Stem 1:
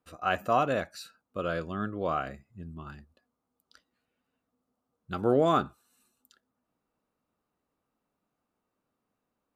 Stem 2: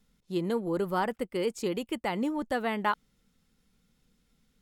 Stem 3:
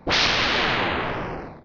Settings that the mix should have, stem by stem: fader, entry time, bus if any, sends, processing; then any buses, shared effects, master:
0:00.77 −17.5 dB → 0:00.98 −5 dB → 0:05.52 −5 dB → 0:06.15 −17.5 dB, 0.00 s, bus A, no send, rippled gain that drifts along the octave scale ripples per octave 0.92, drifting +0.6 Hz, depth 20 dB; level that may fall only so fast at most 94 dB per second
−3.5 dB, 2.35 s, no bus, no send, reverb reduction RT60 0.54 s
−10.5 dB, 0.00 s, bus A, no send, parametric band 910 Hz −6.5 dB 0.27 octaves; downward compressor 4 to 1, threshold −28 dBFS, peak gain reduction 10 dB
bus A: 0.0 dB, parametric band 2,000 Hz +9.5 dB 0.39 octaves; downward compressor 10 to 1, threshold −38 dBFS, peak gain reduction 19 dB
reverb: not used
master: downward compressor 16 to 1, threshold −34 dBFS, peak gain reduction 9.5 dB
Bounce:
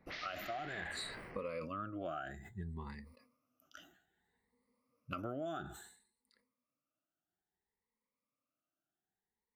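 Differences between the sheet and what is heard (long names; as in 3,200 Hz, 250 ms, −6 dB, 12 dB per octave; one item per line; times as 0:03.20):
stem 2: muted
stem 3 −10.5 dB → −20.0 dB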